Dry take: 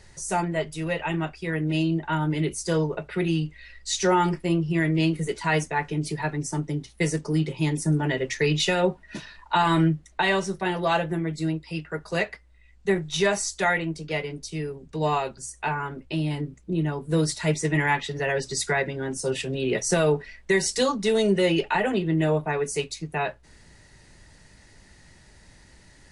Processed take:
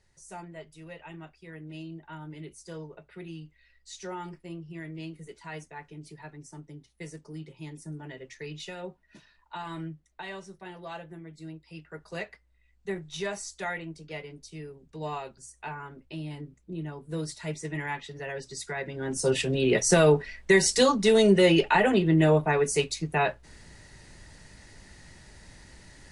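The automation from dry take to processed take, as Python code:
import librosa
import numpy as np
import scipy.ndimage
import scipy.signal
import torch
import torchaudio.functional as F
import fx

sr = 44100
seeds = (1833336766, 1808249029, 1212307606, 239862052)

y = fx.gain(x, sr, db=fx.line((11.32, -17.0), (12.02, -10.5), (18.74, -10.5), (19.23, 2.0)))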